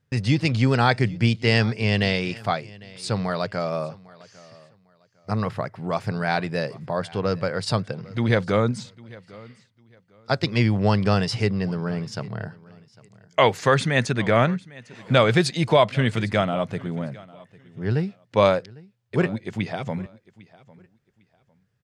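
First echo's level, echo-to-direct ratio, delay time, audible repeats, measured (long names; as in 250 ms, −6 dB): −22.0 dB, −22.0 dB, 802 ms, 2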